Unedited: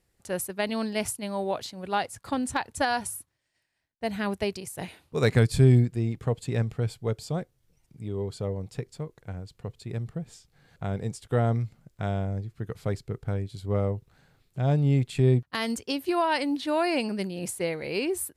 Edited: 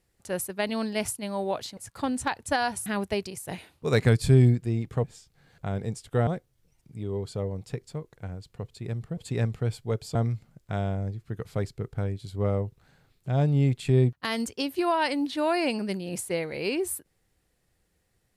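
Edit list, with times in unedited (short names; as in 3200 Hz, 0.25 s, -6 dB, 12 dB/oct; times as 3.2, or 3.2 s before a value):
1.77–2.06 cut
3.15–4.16 cut
6.34–7.32 swap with 10.22–11.45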